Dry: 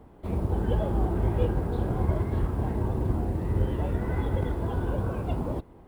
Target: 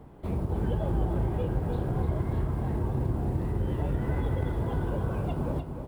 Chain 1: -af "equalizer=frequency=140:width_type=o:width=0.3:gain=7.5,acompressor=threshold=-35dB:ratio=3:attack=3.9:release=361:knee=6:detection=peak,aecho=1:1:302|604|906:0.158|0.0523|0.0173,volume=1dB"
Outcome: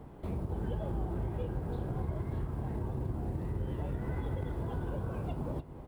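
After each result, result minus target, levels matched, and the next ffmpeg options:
downward compressor: peak gain reduction +6.5 dB; echo-to-direct −8.5 dB
-af "equalizer=frequency=140:width_type=o:width=0.3:gain=7.5,acompressor=threshold=-25.5dB:ratio=3:attack=3.9:release=361:knee=6:detection=peak,aecho=1:1:302|604|906:0.158|0.0523|0.0173,volume=1dB"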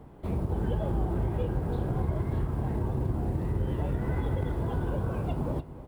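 echo-to-direct −8.5 dB
-af "equalizer=frequency=140:width_type=o:width=0.3:gain=7.5,acompressor=threshold=-25.5dB:ratio=3:attack=3.9:release=361:knee=6:detection=peak,aecho=1:1:302|604|906|1208:0.422|0.139|0.0459|0.0152,volume=1dB"

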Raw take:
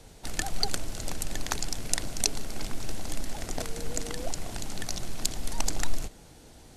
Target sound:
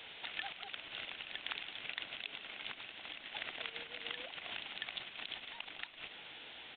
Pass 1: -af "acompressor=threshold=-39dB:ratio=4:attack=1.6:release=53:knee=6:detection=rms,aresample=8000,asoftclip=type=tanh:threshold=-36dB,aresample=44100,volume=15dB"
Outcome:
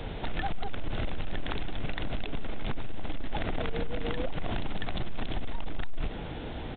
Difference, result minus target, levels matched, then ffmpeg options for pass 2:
4,000 Hz band −7.5 dB
-af "acompressor=threshold=-39dB:ratio=4:attack=1.6:release=53:knee=6:detection=rms,bandpass=frequency=2900:width_type=q:width=1.7:csg=0,aresample=8000,asoftclip=type=tanh:threshold=-36dB,aresample=44100,volume=15dB"

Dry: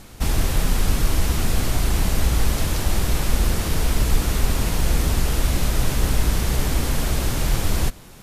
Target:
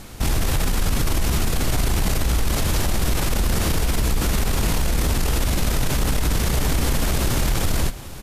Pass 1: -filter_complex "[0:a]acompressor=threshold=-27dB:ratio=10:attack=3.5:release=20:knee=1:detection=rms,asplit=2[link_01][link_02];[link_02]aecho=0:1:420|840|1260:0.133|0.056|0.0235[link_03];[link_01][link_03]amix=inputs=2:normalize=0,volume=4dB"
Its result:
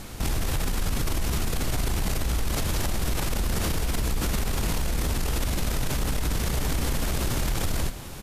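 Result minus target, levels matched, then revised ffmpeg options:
downward compressor: peak gain reduction +6 dB
-filter_complex "[0:a]acompressor=threshold=-20.5dB:ratio=10:attack=3.5:release=20:knee=1:detection=rms,asplit=2[link_01][link_02];[link_02]aecho=0:1:420|840|1260:0.133|0.056|0.0235[link_03];[link_01][link_03]amix=inputs=2:normalize=0,volume=4dB"

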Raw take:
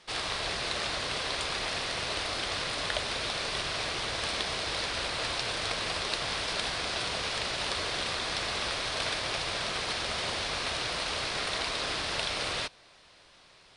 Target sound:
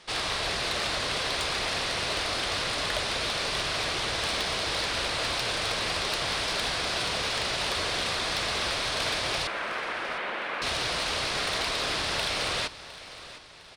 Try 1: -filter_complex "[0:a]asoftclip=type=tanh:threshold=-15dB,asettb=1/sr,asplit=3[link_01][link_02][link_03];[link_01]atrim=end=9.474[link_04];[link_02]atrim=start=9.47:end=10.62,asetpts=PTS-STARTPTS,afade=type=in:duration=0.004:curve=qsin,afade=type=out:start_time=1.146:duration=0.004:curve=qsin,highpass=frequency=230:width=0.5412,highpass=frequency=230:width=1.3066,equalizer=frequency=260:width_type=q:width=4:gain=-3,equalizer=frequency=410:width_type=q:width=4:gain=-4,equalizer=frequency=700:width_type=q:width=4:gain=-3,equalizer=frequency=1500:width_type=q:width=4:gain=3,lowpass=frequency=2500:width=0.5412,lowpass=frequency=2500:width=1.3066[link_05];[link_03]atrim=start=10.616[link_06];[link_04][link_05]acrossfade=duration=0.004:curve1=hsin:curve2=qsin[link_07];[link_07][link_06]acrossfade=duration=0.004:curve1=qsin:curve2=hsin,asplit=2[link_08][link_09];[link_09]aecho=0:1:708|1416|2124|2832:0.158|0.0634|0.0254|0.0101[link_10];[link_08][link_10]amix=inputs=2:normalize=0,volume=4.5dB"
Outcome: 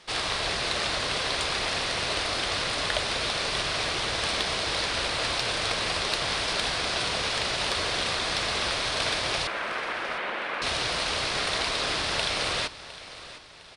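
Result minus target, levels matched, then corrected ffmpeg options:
soft clipping: distortion −15 dB
-filter_complex "[0:a]asoftclip=type=tanh:threshold=-25.5dB,asettb=1/sr,asplit=3[link_01][link_02][link_03];[link_01]atrim=end=9.474[link_04];[link_02]atrim=start=9.47:end=10.62,asetpts=PTS-STARTPTS,afade=type=in:duration=0.004:curve=qsin,afade=type=out:start_time=1.146:duration=0.004:curve=qsin,highpass=frequency=230:width=0.5412,highpass=frequency=230:width=1.3066,equalizer=frequency=260:width_type=q:width=4:gain=-3,equalizer=frequency=410:width_type=q:width=4:gain=-4,equalizer=frequency=700:width_type=q:width=4:gain=-3,equalizer=frequency=1500:width_type=q:width=4:gain=3,lowpass=frequency=2500:width=0.5412,lowpass=frequency=2500:width=1.3066[link_05];[link_03]atrim=start=10.616[link_06];[link_04][link_05]acrossfade=duration=0.004:curve1=hsin:curve2=qsin[link_07];[link_07][link_06]acrossfade=duration=0.004:curve1=qsin:curve2=hsin,asplit=2[link_08][link_09];[link_09]aecho=0:1:708|1416|2124|2832:0.158|0.0634|0.0254|0.0101[link_10];[link_08][link_10]amix=inputs=2:normalize=0,volume=4.5dB"

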